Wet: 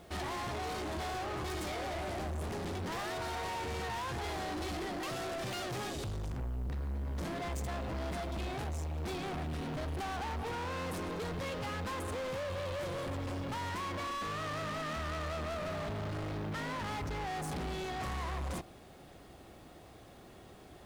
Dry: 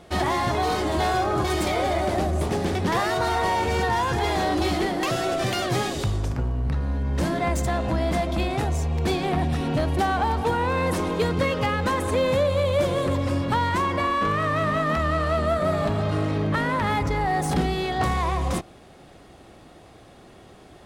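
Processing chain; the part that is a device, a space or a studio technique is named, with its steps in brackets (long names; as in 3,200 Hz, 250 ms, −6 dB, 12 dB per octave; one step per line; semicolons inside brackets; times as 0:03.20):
open-reel tape (soft clipping −30.5 dBFS, distortion −8 dB; parametric band 65 Hz +2.5 dB 0.86 octaves; white noise bed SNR 34 dB)
level −6 dB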